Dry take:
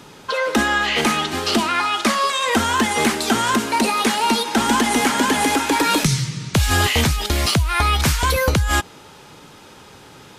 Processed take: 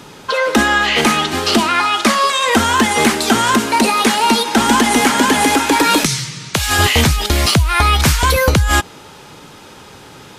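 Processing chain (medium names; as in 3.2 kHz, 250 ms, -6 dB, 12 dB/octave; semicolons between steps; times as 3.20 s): 6.05–6.79 s: bass shelf 350 Hz -11 dB; trim +5 dB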